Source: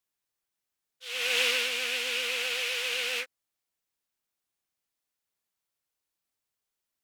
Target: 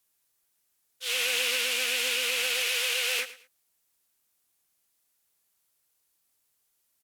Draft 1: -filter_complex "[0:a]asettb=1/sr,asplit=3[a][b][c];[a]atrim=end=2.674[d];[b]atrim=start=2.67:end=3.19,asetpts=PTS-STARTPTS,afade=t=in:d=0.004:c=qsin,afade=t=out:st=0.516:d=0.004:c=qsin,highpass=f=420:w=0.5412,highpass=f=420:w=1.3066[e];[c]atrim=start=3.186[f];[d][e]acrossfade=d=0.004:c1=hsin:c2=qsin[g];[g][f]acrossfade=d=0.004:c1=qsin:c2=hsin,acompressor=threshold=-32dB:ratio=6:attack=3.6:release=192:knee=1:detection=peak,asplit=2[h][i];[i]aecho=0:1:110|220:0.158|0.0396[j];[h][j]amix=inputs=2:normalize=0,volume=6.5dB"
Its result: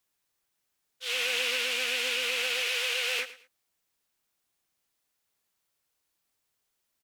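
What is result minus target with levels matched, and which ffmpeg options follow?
8000 Hz band -4.0 dB
-filter_complex "[0:a]asettb=1/sr,asplit=3[a][b][c];[a]atrim=end=2.674[d];[b]atrim=start=2.67:end=3.19,asetpts=PTS-STARTPTS,afade=t=in:d=0.004:c=qsin,afade=t=out:st=0.516:d=0.004:c=qsin,highpass=f=420:w=0.5412,highpass=f=420:w=1.3066[e];[c]atrim=start=3.186[f];[d][e]acrossfade=d=0.004:c1=hsin:c2=qsin[g];[g][f]acrossfade=d=0.004:c1=qsin:c2=hsin,acompressor=threshold=-32dB:ratio=6:attack=3.6:release=192:knee=1:detection=peak,equalizer=f=12k:w=0.5:g=9,asplit=2[h][i];[i]aecho=0:1:110|220:0.158|0.0396[j];[h][j]amix=inputs=2:normalize=0,volume=6.5dB"

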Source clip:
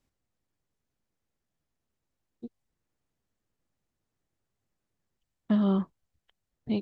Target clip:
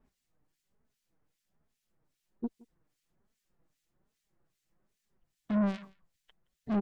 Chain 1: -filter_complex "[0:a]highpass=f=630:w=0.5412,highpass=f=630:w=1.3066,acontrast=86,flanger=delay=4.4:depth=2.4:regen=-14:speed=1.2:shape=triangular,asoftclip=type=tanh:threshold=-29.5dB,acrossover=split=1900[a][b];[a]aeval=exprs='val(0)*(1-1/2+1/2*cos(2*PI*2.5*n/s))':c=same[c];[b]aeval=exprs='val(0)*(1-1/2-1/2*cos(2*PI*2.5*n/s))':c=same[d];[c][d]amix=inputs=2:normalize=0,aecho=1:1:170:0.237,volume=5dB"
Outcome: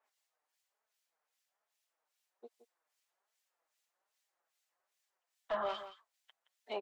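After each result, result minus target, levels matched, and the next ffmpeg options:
echo-to-direct +11 dB; 500 Hz band +6.0 dB
-filter_complex "[0:a]highpass=f=630:w=0.5412,highpass=f=630:w=1.3066,acontrast=86,flanger=delay=4.4:depth=2.4:regen=-14:speed=1.2:shape=triangular,asoftclip=type=tanh:threshold=-29.5dB,acrossover=split=1900[a][b];[a]aeval=exprs='val(0)*(1-1/2+1/2*cos(2*PI*2.5*n/s))':c=same[c];[b]aeval=exprs='val(0)*(1-1/2-1/2*cos(2*PI*2.5*n/s))':c=same[d];[c][d]amix=inputs=2:normalize=0,aecho=1:1:170:0.0668,volume=5dB"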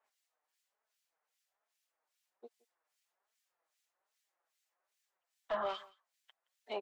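500 Hz band +6.0 dB
-filter_complex "[0:a]acontrast=86,flanger=delay=4.4:depth=2.4:regen=-14:speed=1.2:shape=triangular,asoftclip=type=tanh:threshold=-29.5dB,acrossover=split=1900[a][b];[a]aeval=exprs='val(0)*(1-1/2+1/2*cos(2*PI*2.5*n/s))':c=same[c];[b]aeval=exprs='val(0)*(1-1/2-1/2*cos(2*PI*2.5*n/s))':c=same[d];[c][d]amix=inputs=2:normalize=0,aecho=1:1:170:0.0668,volume=5dB"

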